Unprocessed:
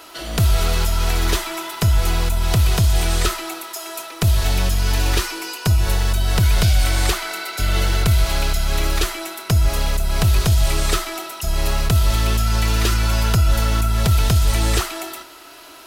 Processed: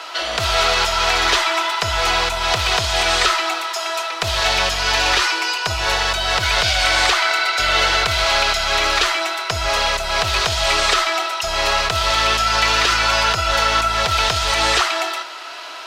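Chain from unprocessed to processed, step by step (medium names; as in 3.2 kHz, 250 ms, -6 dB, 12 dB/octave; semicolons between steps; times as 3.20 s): three-band isolator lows -23 dB, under 520 Hz, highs -23 dB, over 6.2 kHz; loudness maximiser +15.5 dB; trim -4.5 dB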